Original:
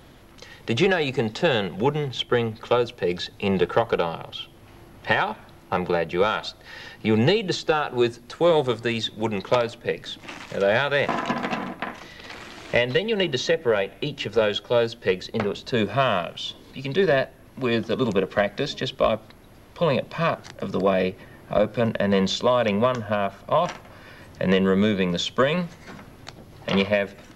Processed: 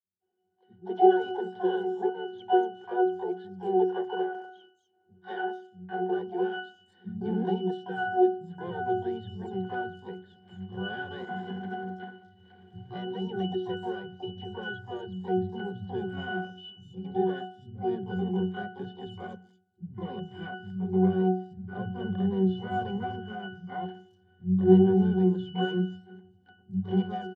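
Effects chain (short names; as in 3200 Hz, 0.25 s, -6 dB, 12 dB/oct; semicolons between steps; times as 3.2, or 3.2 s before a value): expander -35 dBFS; hard clip -14 dBFS, distortion -19 dB; high-pass sweep 360 Hz -> 130 Hz, 5.24–8.92; harmoniser -3 st -16 dB, +3 st -12 dB, +12 st -3 dB; octave resonator F#, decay 0.45 s; three bands offset in time lows, mids, highs 0.2/0.45 s, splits 170/5000 Hz; gain +6 dB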